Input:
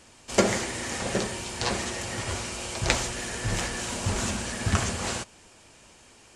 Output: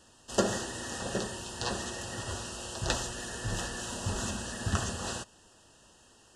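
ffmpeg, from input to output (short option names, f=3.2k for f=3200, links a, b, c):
-af "asuperstop=centerf=2200:order=20:qfactor=3.6,volume=-5.5dB"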